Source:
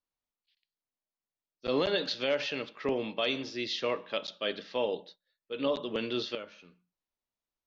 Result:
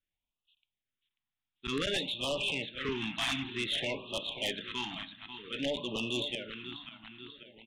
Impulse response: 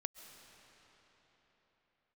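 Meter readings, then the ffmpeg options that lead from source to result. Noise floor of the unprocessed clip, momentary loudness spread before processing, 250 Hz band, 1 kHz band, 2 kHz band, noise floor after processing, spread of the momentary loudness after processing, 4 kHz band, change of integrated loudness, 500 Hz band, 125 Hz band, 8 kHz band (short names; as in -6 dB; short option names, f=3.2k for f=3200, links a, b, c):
under -85 dBFS, 8 LU, -2.0 dB, -3.5 dB, +1.5 dB, under -85 dBFS, 13 LU, +2.0 dB, -1.5 dB, -7.0 dB, +3.0 dB, n/a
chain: -af "equalizer=f=530:w=0.34:g=-11.5,bandreject=f=480:w=12,aresample=8000,aeval=exprs='(mod(23.7*val(0)+1,2)-1)/23.7':c=same,aresample=44100,aecho=1:1:540|1080|1620|2160|2700|3240:0.251|0.133|0.0706|0.0374|0.0198|0.0105,aeval=exprs='0.0631*(cos(1*acos(clip(val(0)/0.0631,-1,1)))-cos(1*PI/2))+0.01*(cos(4*acos(clip(val(0)/0.0631,-1,1)))-cos(4*PI/2))+0.0224*(cos(5*acos(clip(val(0)/0.0631,-1,1)))-cos(5*PI/2))+0.00282*(cos(6*acos(clip(val(0)/0.0631,-1,1)))-cos(6*PI/2))':c=same,afftfilt=real='re*(1-between(b*sr/1024,430*pow(1800/430,0.5+0.5*sin(2*PI*0.54*pts/sr))/1.41,430*pow(1800/430,0.5+0.5*sin(2*PI*0.54*pts/sr))*1.41))':imag='im*(1-between(b*sr/1024,430*pow(1800/430,0.5+0.5*sin(2*PI*0.54*pts/sr))/1.41,430*pow(1800/430,0.5+0.5*sin(2*PI*0.54*pts/sr))*1.41))':win_size=1024:overlap=0.75"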